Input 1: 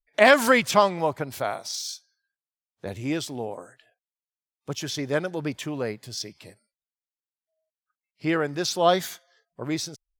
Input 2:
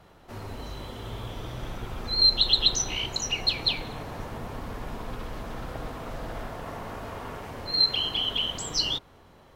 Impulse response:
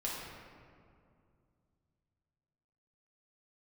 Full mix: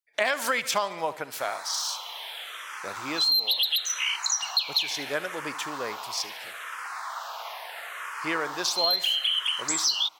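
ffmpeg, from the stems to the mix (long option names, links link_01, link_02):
-filter_complex "[0:a]highpass=frequency=1100:poles=1,volume=2.5dB,asplit=2[link_01][link_02];[link_02]volume=-18.5dB[link_03];[1:a]highpass=frequency=950:width=0.5412,highpass=frequency=950:width=1.3066,aeval=exprs='0.376*sin(PI/2*2.24*val(0)/0.376)':channel_layout=same,asplit=2[link_04][link_05];[link_05]afreqshift=-0.74[link_06];[link_04][link_06]amix=inputs=2:normalize=1,adelay=1100,volume=-0.5dB[link_07];[link_03]aecho=0:1:73|146|219|292|365|438|511|584:1|0.53|0.281|0.149|0.0789|0.0418|0.0222|0.0117[link_08];[link_01][link_07][link_08]amix=inputs=3:normalize=0,acompressor=threshold=-22dB:ratio=6"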